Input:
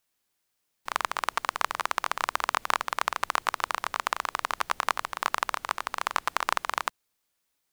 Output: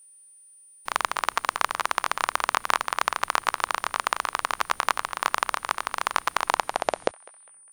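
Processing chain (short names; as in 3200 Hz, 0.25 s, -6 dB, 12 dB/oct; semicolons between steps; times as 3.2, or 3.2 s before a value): tape stop at the end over 1.39 s; whine 9300 Hz -53 dBFS; narrowing echo 0.202 s, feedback 41%, band-pass 1600 Hz, level -20.5 dB; gain +3 dB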